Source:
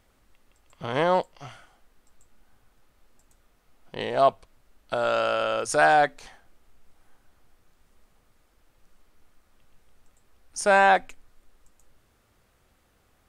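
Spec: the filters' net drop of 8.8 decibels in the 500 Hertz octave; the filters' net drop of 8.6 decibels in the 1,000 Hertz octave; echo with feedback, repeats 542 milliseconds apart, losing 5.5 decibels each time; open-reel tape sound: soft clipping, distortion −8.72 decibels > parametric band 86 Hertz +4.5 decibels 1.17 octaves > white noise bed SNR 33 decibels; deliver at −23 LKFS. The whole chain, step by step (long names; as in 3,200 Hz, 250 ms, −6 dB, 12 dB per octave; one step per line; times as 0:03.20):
parametric band 500 Hz −8 dB
parametric band 1,000 Hz −9 dB
repeating echo 542 ms, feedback 53%, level −5.5 dB
soft clipping −27 dBFS
parametric band 86 Hz +4.5 dB 1.17 octaves
white noise bed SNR 33 dB
level +12.5 dB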